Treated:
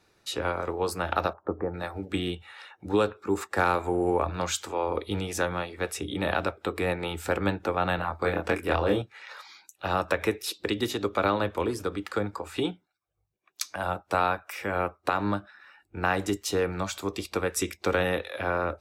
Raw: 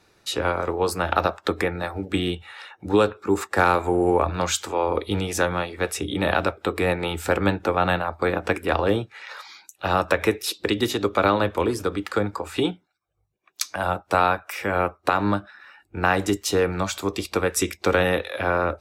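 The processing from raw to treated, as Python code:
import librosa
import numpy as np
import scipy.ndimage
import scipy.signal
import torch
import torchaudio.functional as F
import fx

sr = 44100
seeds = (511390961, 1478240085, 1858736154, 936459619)

y = fx.lowpass(x, sr, hz=1100.0, slope=24, at=(1.33, 1.74))
y = fx.doubler(y, sr, ms=24.0, db=-2.5, at=(7.96, 9.02))
y = F.gain(torch.from_numpy(y), -5.5).numpy()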